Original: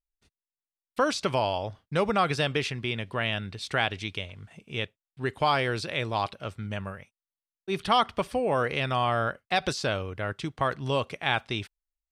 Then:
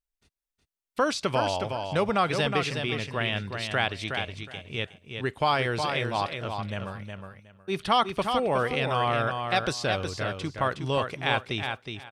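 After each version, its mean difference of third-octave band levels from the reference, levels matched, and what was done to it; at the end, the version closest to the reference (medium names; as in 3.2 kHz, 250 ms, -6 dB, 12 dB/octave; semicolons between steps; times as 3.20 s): 4.5 dB: feedback delay 366 ms, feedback 20%, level -6 dB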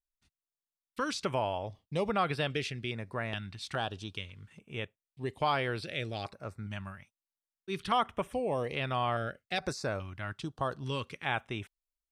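2.0 dB: step-sequenced notch 2.4 Hz 470–6600 Hz; trim -5 dB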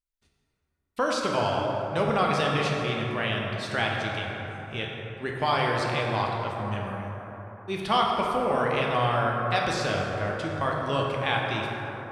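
7.5 dB: plate-style reverb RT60 4 s, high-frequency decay 0.35×, DRR -2 dB; trim -2.5 dB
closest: second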